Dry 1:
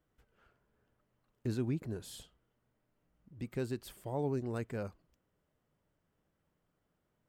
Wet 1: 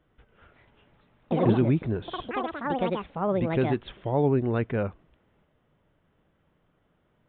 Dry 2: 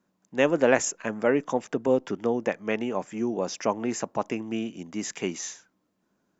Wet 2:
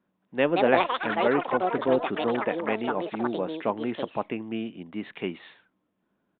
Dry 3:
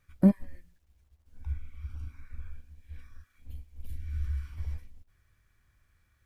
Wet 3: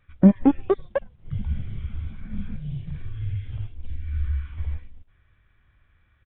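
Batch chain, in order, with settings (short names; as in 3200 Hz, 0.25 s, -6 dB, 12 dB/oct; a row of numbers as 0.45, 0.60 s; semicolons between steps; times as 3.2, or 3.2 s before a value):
echoes that change speed 0.291 s, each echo +6 st, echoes 3; downsampling 8000 Hz; match loudness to -27 LUFS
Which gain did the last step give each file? +11.5, -1.5, +6.5 dB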